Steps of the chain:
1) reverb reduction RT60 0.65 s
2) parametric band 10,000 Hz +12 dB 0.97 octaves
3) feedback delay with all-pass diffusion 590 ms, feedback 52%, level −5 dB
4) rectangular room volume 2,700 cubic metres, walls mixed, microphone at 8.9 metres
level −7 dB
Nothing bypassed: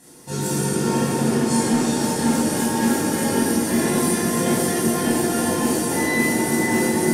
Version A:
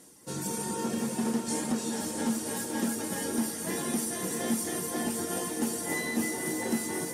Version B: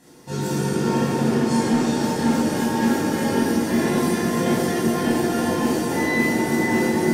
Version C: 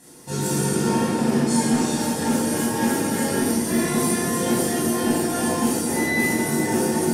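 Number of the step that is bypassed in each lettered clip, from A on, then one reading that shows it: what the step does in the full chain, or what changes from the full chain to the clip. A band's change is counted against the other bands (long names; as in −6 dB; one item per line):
4, echo-to-direct ratio 10.5 dB to −3.5 dB
2, 8 kHz band −8.5 dB
3, echo-to-direct ratio 10.5 dB to 8.5 dB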